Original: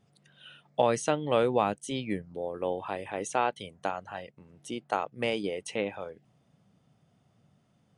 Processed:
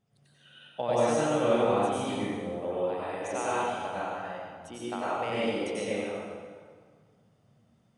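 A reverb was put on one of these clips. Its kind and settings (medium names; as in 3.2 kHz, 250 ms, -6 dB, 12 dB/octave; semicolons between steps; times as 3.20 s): plate-style reverb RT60 1.8 s, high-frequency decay 0.75×, pre-delay 80 ms, DRR -9 dB; trim -9 dB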